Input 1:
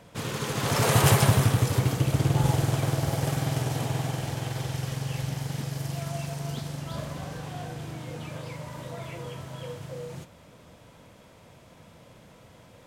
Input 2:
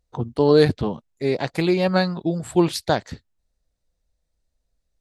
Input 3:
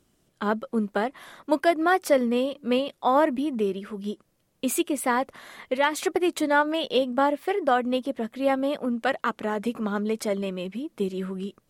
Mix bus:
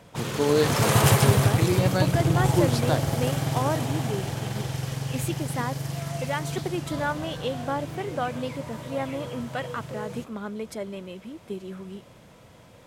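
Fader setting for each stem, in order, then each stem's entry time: +1.0 dB, -6.5 dB, -7.0 dB; 0.00 s, 0.00 s, 0.50 s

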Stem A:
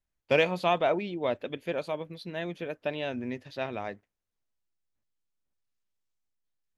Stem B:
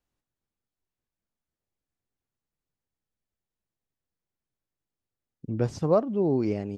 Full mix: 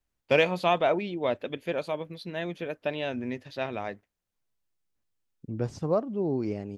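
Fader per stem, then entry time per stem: +1.5 dB, -4.0 dB; 0.00 s, 0.00 s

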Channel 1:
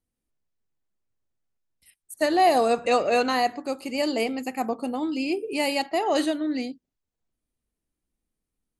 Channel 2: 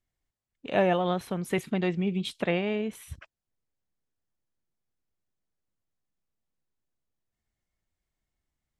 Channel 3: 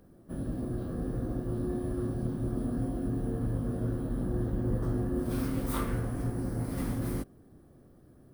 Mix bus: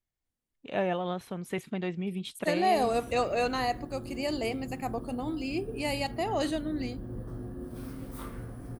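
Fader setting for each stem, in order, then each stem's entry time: -6.5 dB, -5.5 dB, -9.0 dB; 0.25 s, 0.00 s, 2.45 s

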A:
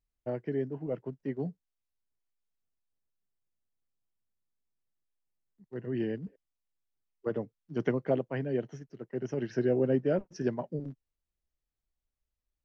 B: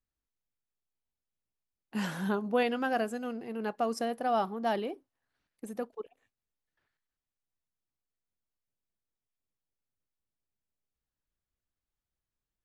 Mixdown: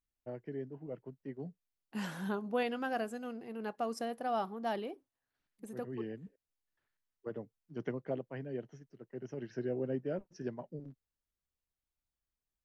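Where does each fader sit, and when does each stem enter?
-9.0 dB, -5.5 dB; 0.00 s, 0.00 s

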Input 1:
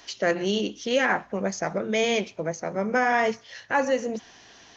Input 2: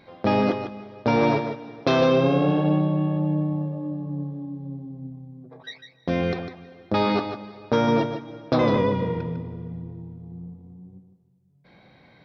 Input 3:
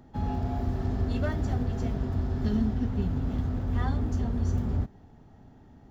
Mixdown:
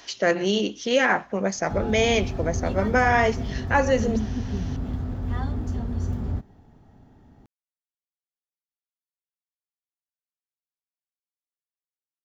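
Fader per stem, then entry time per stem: +2.5 dB, mute, 0.0 dB; 0.00 s, mute, 1.55 s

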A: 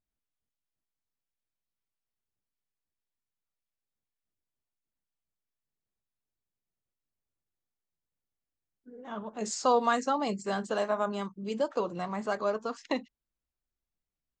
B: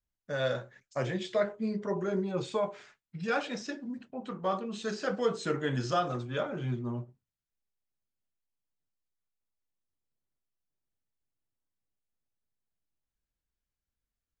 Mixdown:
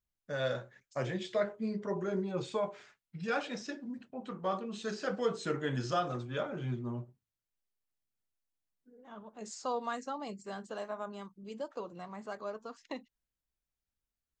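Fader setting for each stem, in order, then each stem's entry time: -10.5 dB, -3.0 dB; 0.00 s, 0.00 s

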